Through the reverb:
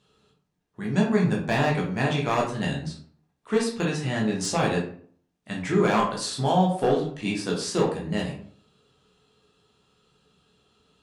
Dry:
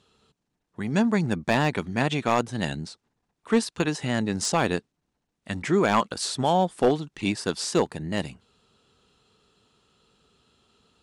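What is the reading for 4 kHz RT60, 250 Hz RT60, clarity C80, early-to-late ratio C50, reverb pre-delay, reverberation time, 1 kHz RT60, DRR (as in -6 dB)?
0.35 s, 0.65 s, 10.5 dB, 6.0 dB, 9 ms, 0.50 s, 0.50 s, -3.0 dB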